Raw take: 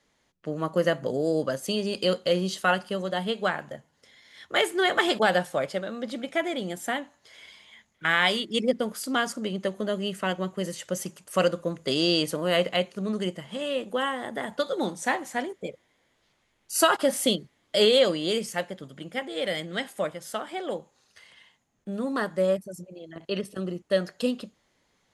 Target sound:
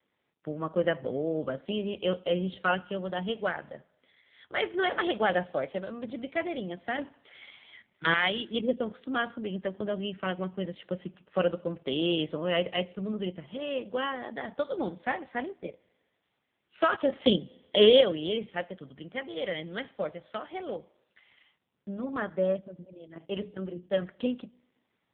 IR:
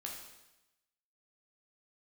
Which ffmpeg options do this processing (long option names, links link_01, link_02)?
-filter_complex "[0:a]asettb=1/sr,asplit=3[link_01][link_02][link_03];[link_01]atrim=end=6.984[link_04];[link_02]atrim=start=6.98:end=8.14,asetpts=PTS-STARTPTS,afade=type=in:duration=0.004:curve=qsin,afade=type=out:start_time=1.156:duration=0.004:curve=qsin,aeval=exprs='0.355*(cos(1*acos(clip(val(0)/0.355,-1,1)))-cos(1*PI/2))+0.0447*(cos(2*acos(clip(val(0)/0.355,-1,1)))-cos(2*PI/2))+0.178*(cos(4*acos(clip(val(0)/0.355,-1,1)))-cos(4*PI/2))+0.0794*(cos(5*acos(clip(val(0)/0.355,-1,1)))-cos(5*PI/2))+0.00398*(cos(6*acos(clip(val(0)/0.355,-1,1)))-cos(6*PI/2))':channel_layout=same[link_05];[link_03]atrim=start=8.136[link_06];[link_04][link_05]acrossfade=duration=0.004:curve1=hsin:curve2=qsin[link_07];[link_07][link_06]acrossfade=duration=0.004:curve1=qsin:curve2=hsin,asettb=1/sr,asplit=3[link_08][link_09][link_10];[link_08]atrim=end=17.204[link_11];[link_09]atrim=start=17.2:end=18.01,asetpts=PTS-STARTPTS,afade=type=in:duration=0.004:curve=qsin,afade=type=out:start_time=0.806:duration=0.004:curve=qsin,acontrast=53[link_12];[link_10]atrim=start=18.006[link_13];[link_11][link_12]acrossfade=duration=0.004:curve1=hsin:curve2=qsin[link_14];[link_14][link_13]acrossfade=duration=0.004:curve1=qsin:curve2=hsin,asettb=1/sr,asplit=3[link_15][link_16][link_17];[link_15]atrim=end=23.184[link_18];[link_16]atrim=start=23.18:end=24.02,asetpts=PTS-STARTPTS,afade=type=in:duration=0.004:curve=qsin,afade=type=out:start_time=0.836:duration=0.004:curve=qsin,bandreject=frequency=60:width_type=h:width=6,bandreject=frequency=120:width_type=h:width=6,bandreject=frequency=180:width_type=h:width=6,bandreject=frequency=240:width_type=h:width=6,bandreject=frequency=300:width_type=h:width=6,bandreject=frequency=360:width_type=h:width=6,bandreject=frequency=420:width_type=h:width=6[link_19];[link_17]atrim=start=24.016[link_20];[link_18][link_19]acrossfade=duration=0.004:curve1=hsin:curve2=qsin[link_21];[link_21][link_20]acrossfade=duration=0.004:curve1=qsin:curve2=hsin,asplit=2[link_22][link_23];[1:a]atrim=start_sample=2205[link_24];[link_23][link_24]afir=irnorm=-1:irlink=0,volume=-17.5dB[link_25];[link_22][link_25]amix=inputs=2:normalize=0,volume=-3.5dB" -ar 8000 -c:a libopencore_amrnb -b:a 5900